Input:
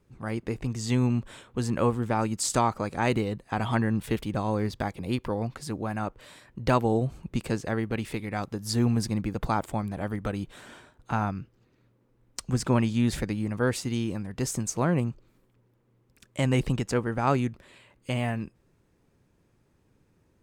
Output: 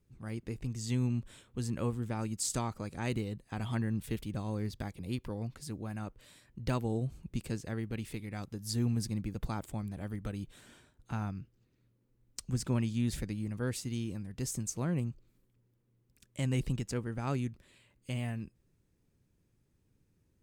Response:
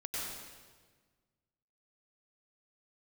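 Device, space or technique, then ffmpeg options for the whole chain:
smiley-face EQ: -af "lowshelf=f=140:g=4,equalizer=f=890:t=o:w=2.2:g=-7.5,highshelf=f=7400:g=5,volume=0.422"

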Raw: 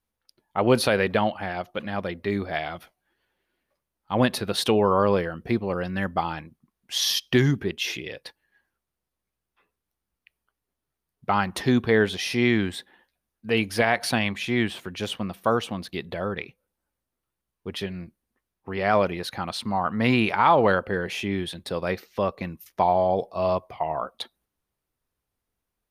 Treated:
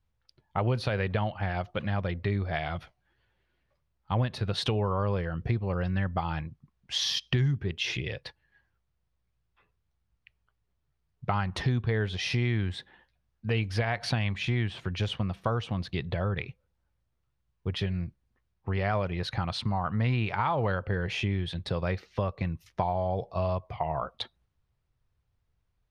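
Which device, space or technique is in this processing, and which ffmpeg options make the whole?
jukebox: -af "lowpass=5100,lowshelf=f=170:t=q:w=1.5:g=10.5,acompressor=threshold=0.0501:ratio=4"

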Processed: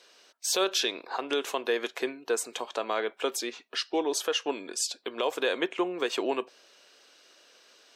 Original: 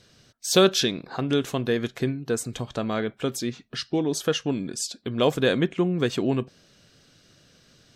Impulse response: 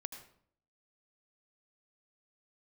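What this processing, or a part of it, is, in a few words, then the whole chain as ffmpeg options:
laptop speaker: -af "highpass=f=380:w=0.5412,highpass=f=380:w=1.3066,equalizer=f=950:t=o:w=0.52:g=6.5,equalizer=f=2600:t=o:w=0.46:g=4,alimiter=limit=0.15:level=0:latency=1:release=136"

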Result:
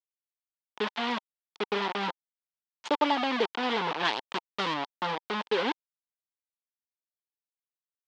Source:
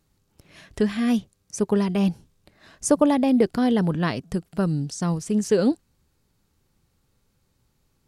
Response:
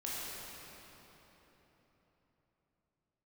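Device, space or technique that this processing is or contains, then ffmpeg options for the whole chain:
hand-held game console: -filter_complex "[0:a]acrusher=bits=3:mix=0:aa=0.000001,highpass=440,equalizer=f=600:t=q:w=4:g=-5,equalizer=f=910:t=q:w=4:g=9,equalizer=f=3300:t=q:w=4:g=4,lowpass=f=4100:w=0.5412,lowpass=f=4100:w=1.3066,asettb=1/sr,asplit=3[s0][s1][s2];[s0]atrim=end=4.054[s3];[s1]atrim=start=4.05:end=4.74,asetpts=PTS-STARTPTS,afade=t=in:d=0.004:c=qsin,afade=t=out:st=0.686:d=0.004:c=qsin,highshelf=f=3100:g=9.5[s4];[s2]atrim=start=4.736[s5];[s3][s4]acrossfade=d=0.004:c1=hsin:c2=qsin[s6];[s6][s5]acrossfade=d=0.004:c1=qsin:c2=hsin,volume=0.596"

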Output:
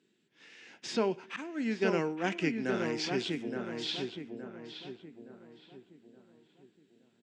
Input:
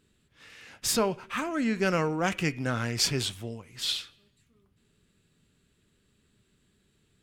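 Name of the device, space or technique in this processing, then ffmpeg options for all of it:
television speaker: -filter_complex "[0:a]asettb=1/sr,asplit=3[s0][s1][s2];[s0]atrim=end=1.364[s3];[s1]atrim=start=1.36:end=2.24,asetpts=PTS-STARTPTS,afade=t=in:d=0.004:c=qsin,afade=t=out:st=0.876:d=0.004:c=qsin,agate=range=0.0224:threshold=0.0631:ratio=3:detection=peak[s4];[s2]atrim=start=2.236[s5];[s3][s4]acrossfade=d=0.004:c1=hsin:c2=qsin[s6];[s6][s5]acrossfade=d=0.004:c1=qsin:c2=hsin,highpass=f=180:w=0.5412,highpass=f=180:w=1.3066,equalizer=f=350:t=q:w=4:g=6,equalizer=f=580:t=q:w=4:g=-4,equalizer=f=1200:t=q:w=4:g=-9,equalizer=f=4200:t=q:w=4:g=-3,lowpass=f=6800:w=0.5412,lowpass=f=6800:w=1.3066,acrossover=split=4400[s7][s8];[s8]acompressor=threshold=0.00501:ratio=4:attack=1:release=60[s9];[s7][s9]amix=inputs=2:normalize=0,asplit=2[s10][s11];[s11]adelay=869,lowpass=f=1700:p=1,volume=0.631,asplit=2[s12][s13];[s13]adelay=869,lowpass=f=1700:p=1,volume=0.43,asplit=2[s14][s15];[s15]adelay=869,lowpass=f=1700:p=1,volume=0.43,asplit=2[s16][s17];[s17]adelay=869,lowpass=f=1700:p=1,volume=0.43,asplit=2[s18][s19];[s19]adelay=869,lowpass=f=1700:p=1,volume=0.43[s20];[s10][s12][s14][s16][s18][s20]amix=inputs=6:normalize=0,volume=0.708"

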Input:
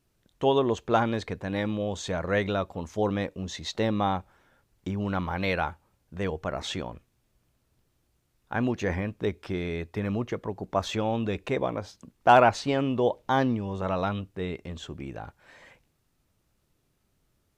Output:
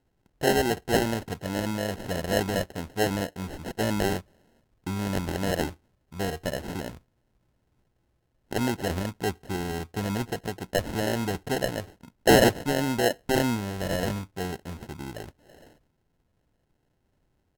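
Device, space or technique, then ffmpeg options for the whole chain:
crushed at another speed: -af "asetrate=55125,aresample=44100,acrusher=samples=30:mix=1:aa=0.000001,asetrate=35280,aresample=44100"

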